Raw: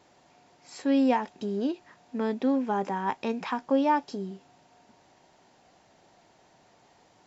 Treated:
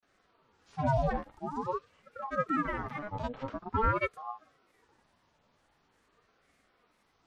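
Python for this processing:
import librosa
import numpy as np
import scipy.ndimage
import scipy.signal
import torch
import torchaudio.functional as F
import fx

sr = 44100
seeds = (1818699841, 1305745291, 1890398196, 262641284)

y = fx.granulator(x, sr, seeds[0], grain_ms=100.0, per_s=20.0, spray_ms=100.0, spread_st=12)
y = fx.hpss(y, sr, part='percussive', gain_db=-18)
y = fx.ring_lfo(y, sr, carrier_hz=660.0, swing_pct=45, hz=0.46)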